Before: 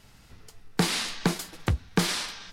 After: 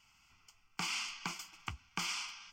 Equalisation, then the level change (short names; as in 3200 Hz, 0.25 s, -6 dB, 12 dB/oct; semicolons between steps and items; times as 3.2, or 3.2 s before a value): tone controls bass -14 dB, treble -9 dB; passive tone stack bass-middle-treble 5-5-5; fixed phaser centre 2600 Hz, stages 8; +6.5 dB